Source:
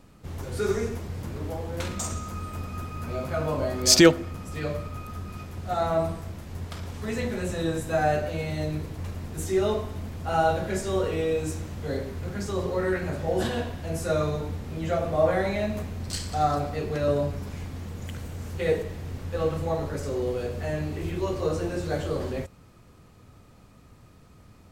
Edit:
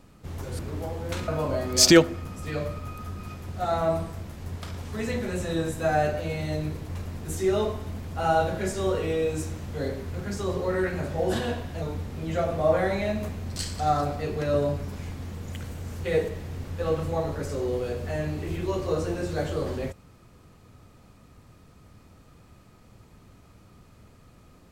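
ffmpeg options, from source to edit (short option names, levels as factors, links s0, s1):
-filter_complex "[0:a]asplit=4[s0][s1][s2][s3];[s0]atrim=end=0.592[s4];[s1]atrim=start=1.268:end=1.962[s5];[s2]atrim=start=3.368:end=13.912[s6];[s3]atrim=start=14.358[s7];[s4][s5]acrossfade=d=0.004:c1=hsin:c2=hsin[s8];[s8][s6]acrossfade=d=0.004:c1=hsin:c2=hsin[s9];[s9][s7]acrossfade=d=0.004:c1=hsin:c2=hsin"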